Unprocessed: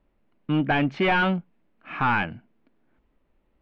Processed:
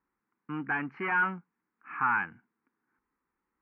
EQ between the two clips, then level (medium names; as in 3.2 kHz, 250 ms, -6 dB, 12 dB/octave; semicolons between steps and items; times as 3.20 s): band-pass filter 1.1 kHz, Q 0.82; distance through air 170 m; static phaser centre 1.5 kHz, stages 4; 0.0 dB